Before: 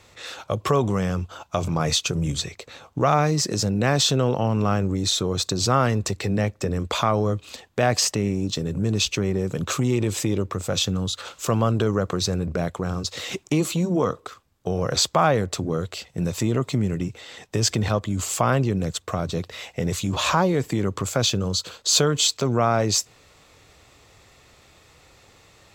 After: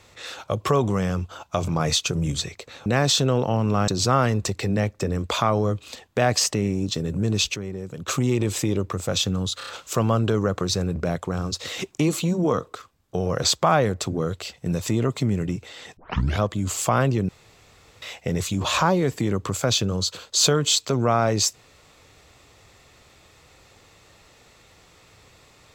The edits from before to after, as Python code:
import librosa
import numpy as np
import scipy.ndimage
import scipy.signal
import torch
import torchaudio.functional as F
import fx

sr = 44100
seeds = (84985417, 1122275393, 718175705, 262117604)

y = fx.edit(x, sr, fx.cut(start_s=2.86, length_s=0.91),
    fx.cut(start_s=4.79, length_s=0.7),
    fx.clip_gain(start_s=9.17, length_s=0.52, db=-8.5),
    fx.stutter(start_s=11.19, slice_s=0.03, count=4),
    fx.tape_start(start_s=17.49, length_s=0.44),
    fx.room_tone_fill(start_s=18.81, length_s=0.73), tone=tone)